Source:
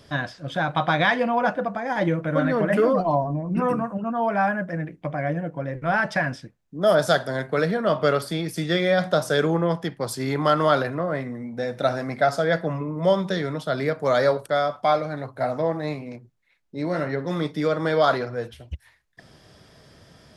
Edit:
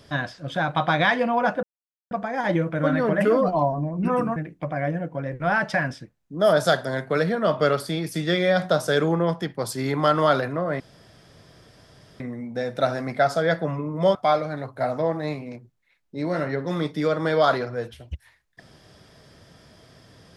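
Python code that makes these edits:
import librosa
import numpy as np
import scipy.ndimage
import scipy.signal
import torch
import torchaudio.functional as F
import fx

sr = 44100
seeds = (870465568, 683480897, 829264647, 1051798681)

y = fx.edit(x, sr, fx.insert_silence(at_s=1.63, length_s=0.48),
    fx.cut(start_s=3.88, length_s=0.9),
    fx.insert_room_tone(at_s=11.22, length_s=1.4),
    fx.cut(start_s=13.17, length_s=1.58), tone=tone)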